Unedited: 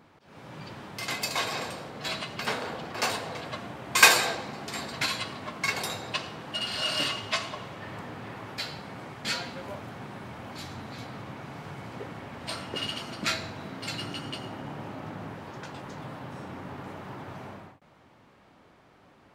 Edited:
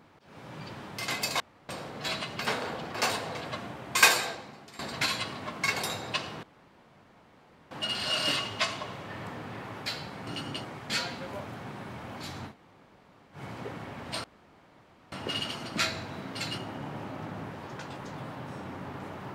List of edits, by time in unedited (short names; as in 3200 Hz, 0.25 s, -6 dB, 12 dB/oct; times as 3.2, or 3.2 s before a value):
1.4–1.69 room tone
3.6–4.79 fade out, to -16 dB
6.43 insert room tone 1.28 s
10.85–11.72 room tone, crossfade 0.10 s
12.59 insert room tone 0.88 s
14.05–14.42 move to 8.99